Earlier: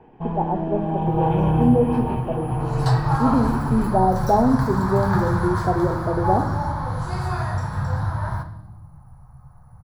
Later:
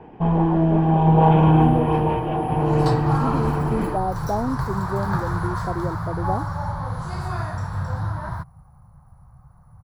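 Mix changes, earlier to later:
speech -4.5 dB; first sound +8.0 dB; reverb: off

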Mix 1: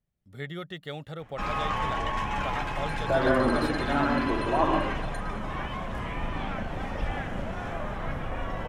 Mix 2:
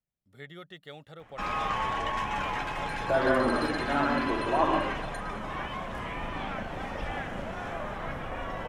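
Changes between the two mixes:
speech -6.5 dB; master: add bass shelf 200 Hz -7.5 dB

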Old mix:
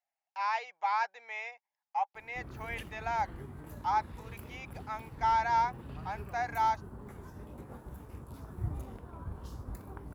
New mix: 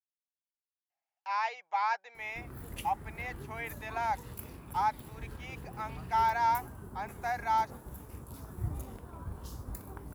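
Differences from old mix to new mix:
speech: entry +0.90 s; background: add treble shelf 5.6 kHz +12 dB

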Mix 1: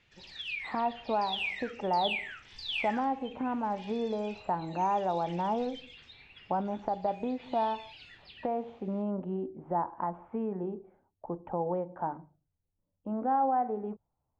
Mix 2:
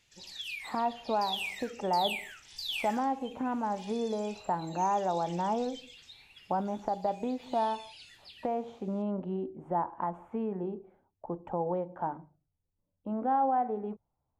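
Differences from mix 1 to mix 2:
background -6.0 dB; master: remove low-pass 2.5 kHz 12 dB/octave

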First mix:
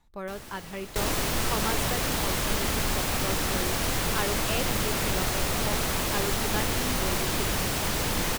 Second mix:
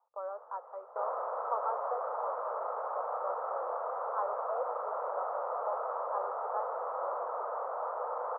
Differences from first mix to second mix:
first sound: add distance through air 300 m; master: add Chebyshev band-pass 490–1300 Hz, order 4

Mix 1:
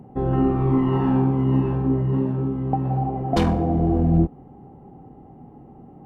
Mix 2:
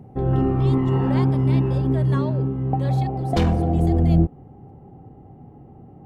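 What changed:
speech: remove band-pass filter 130 Hz, Q 1.2; master: add fifteen-band graphic EQ 100 Hz +8 dB, 250 Hz -3 dB, 1 kHz -4 dB, 10 kHz -3 dB

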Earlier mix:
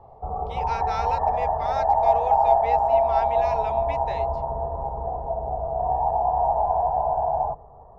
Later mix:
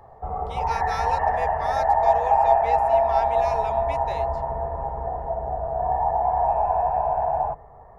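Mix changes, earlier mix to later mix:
background: remove low-pass 1.1 kHz 24 dB/octave; master: remove low-pass 4.9 kHz 12 dB/octave

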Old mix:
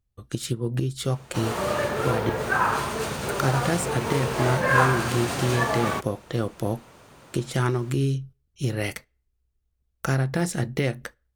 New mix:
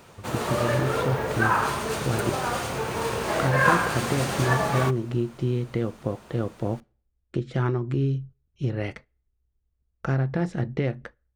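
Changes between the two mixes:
speech: add tape spacing loss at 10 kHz 28 dB; background: entry -1.10 s

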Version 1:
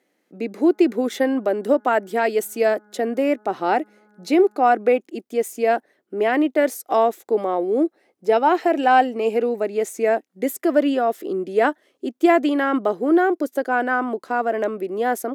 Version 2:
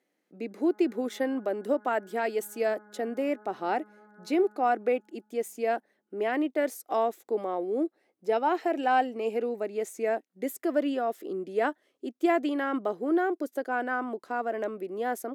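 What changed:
speech -9.0 dB; reverb: on, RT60 2.8 s

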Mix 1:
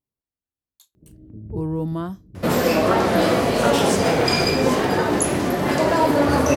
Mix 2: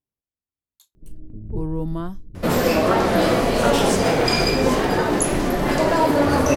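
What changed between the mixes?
speech: send off; first sound: remove high-pass 61 Hz 24 dB/octave

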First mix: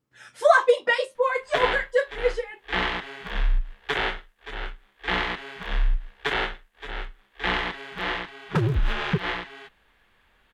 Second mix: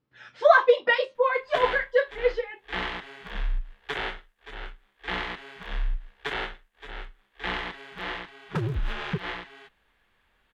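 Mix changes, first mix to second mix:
speech: add low-pass 4.6 kHz 24 dB/octave; background -5.5 dB

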